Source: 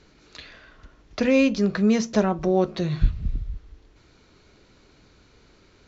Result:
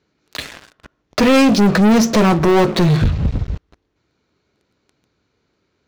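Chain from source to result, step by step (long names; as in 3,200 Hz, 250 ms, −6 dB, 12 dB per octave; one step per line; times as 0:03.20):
high-pass filter 86 Hz 12 dB per octave
high-shelf EQ 2,400 Hz −3.5 dB
leveller curve on the samples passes 5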